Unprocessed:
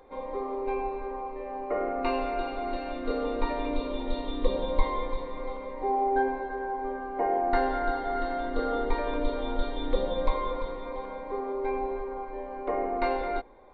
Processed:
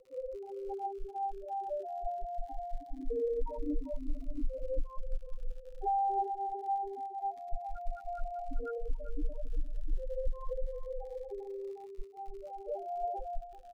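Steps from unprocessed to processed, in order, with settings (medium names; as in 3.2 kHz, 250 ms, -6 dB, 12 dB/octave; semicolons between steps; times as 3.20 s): loudest bins only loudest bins 2; comb 6.3 ms, depth 53%; compression, threshold -28 dBFS, peak gain reduction 14 dB; crackle 90 per s -46 dBFS; low-pass 3.2 kHz 6 dB/octave; delay 389 ms -13.5 dB; Shepard-style phaser rising 0.25 Hz; trim +1 dB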